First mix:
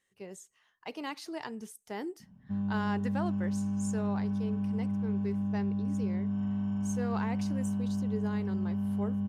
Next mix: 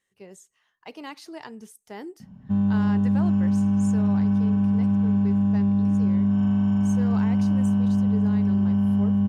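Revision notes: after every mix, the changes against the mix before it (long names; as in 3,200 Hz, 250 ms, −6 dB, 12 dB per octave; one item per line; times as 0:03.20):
background +11.0 dB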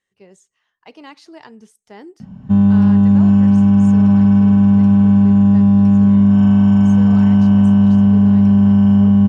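speech: add low-pass filter 7,200 Hz 12 dB per octave
background +10.5 dB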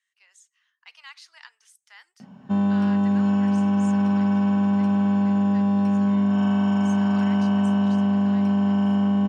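speech: add high-pass filter 1,300 Hz 24 dB per octave
master: add high-pass filter 340 Hz 12 dB per octave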